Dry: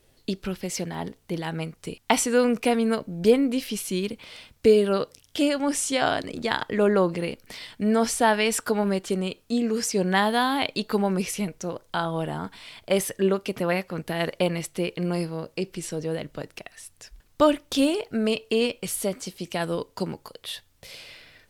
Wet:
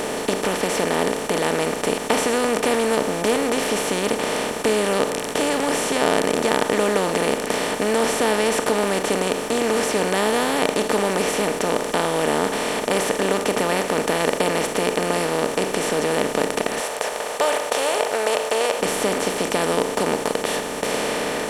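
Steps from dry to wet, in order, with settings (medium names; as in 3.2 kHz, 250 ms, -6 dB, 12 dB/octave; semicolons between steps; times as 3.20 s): spectral levelling over time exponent 0.2; 16.80–18.80 s: resonant low shelf 390 Hz -11 dB, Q 1.5; trim -7.5 dB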